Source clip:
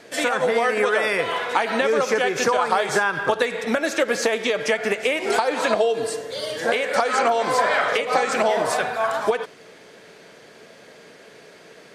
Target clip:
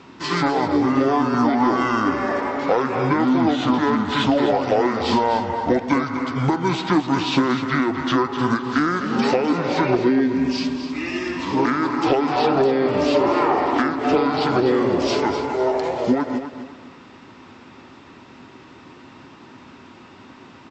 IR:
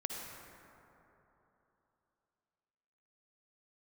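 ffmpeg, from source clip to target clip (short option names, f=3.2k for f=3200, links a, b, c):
-af "acontrast=83,asetrate=25442,aresample=44100,aecho=1:1:253|506|759:0.316|0.0949|0.0285,volume=-5dB"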